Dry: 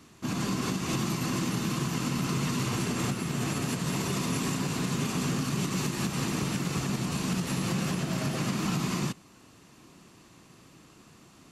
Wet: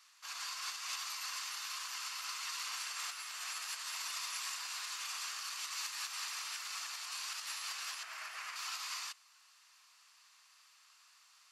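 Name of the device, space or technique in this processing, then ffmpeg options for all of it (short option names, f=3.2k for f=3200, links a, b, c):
headphones lying on a table: -filter_complex "[0:a]highpass=f=1.1k:w=0.5412,highpass=f=1.1k:w=1.3066,equalizer=f=4.8k:t=o:w=0.51:g=6,asettb=1/sr,asplit=3[a][b][c];[a]atrim=end=8.034[d];[b]atrim=start=8.03:end=8.56,asetpts=PTS-STARTPTS,afade=t=in:d=0.004:c=qsin,afade=t=out:st=0.526:d=0.004:c=qsin,highshelf=f=2.9k:t=q:w=1.5:g=-6[e];[c]atrim=start=8.556[f];[d][e]acrossfade=d=0.004:c1=hsin:c2=qsin[g];[g][f]acrossfade=d=0.004:c1=qsin:c2=hsin,volume=-6dB"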